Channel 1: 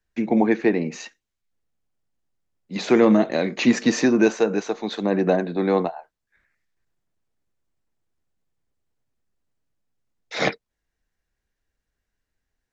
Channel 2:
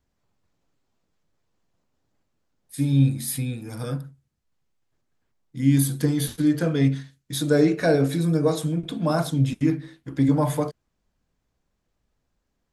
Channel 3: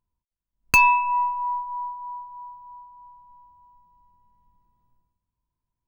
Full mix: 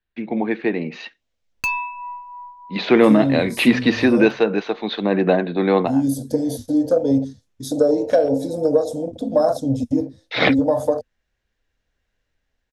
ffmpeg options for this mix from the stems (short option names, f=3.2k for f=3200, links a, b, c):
-filter_complex "[0:a]lowpass=f=3.8k:w=0.5412,lowpass=f=3.8k:w=1.3066,volume=-4.5dB[a];[1:a]afwtdn=0.0355,firequalizer=gain_entry='entry(100,0);entry(160,-27);entry(240,0);entry(360,-15);entry(510,6);entry(970,-9);entry(2200,-18);entry(5500,4);entry(8500,0)':delay=0.05:min_phase=1,acompressor=threshold=-23dB:ratio=10,adelay=300,volume=1.5dB[b];[2:a]adelay=900,volume=-18.5dB[c];[a][b][c]amix=inputs=3:normalize=0,equalizer=f=3.7k:w=0.89:g=6,dynaudnorm=f=370:g=5:m=10dB"